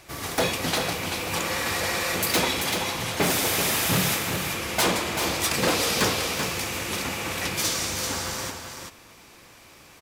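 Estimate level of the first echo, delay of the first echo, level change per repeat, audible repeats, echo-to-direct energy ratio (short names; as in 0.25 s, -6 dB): -6.5 dB, 0.386 s, no steady repeat, 1, -6.5 dB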